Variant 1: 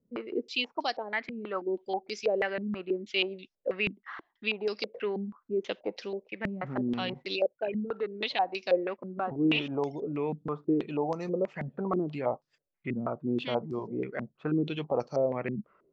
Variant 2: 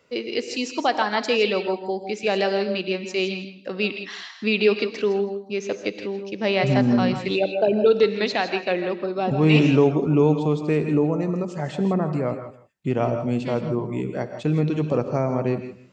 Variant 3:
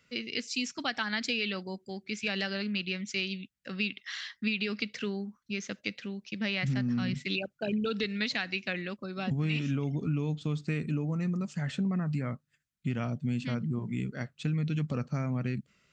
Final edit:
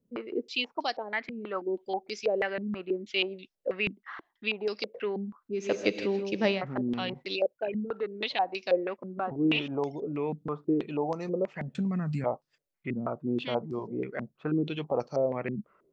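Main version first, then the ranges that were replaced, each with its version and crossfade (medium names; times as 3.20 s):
1
5.64–6.52 s: from 2, crossfade 0.24 s
11.75–12.24 s: from 3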